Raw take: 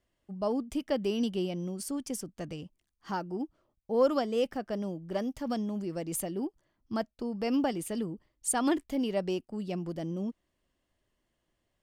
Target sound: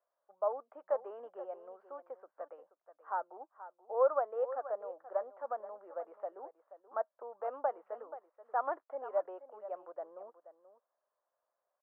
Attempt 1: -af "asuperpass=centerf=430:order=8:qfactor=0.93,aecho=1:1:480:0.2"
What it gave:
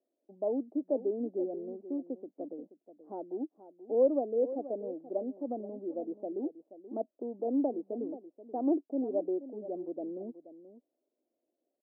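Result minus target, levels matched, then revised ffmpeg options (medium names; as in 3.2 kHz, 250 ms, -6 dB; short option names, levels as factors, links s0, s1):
1 kHz band -10.5 dB
-af "asuperpass=centerf=870:order=8:qfactor=0.93,aecho=1:1:480:0.2"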